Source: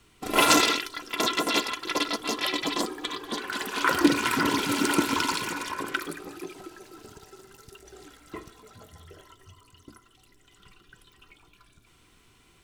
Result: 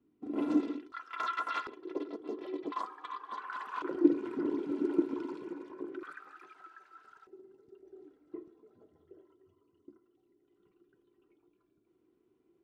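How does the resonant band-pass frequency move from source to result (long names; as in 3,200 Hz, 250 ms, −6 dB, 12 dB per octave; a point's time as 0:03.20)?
resonant band-pass, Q 4.4
280 Hz
from 0:00.92 1,300 Hz
from 0:01.67 370 Hz
from 0:02.72 1,100 Hz
from 0:03.82 350 Hz
from 0:06.03 1,400 Hz
from 0:07.27 350 Hz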